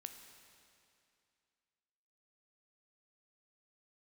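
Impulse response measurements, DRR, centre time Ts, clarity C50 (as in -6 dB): 6.0 dB, 40 ms, 7.0 dB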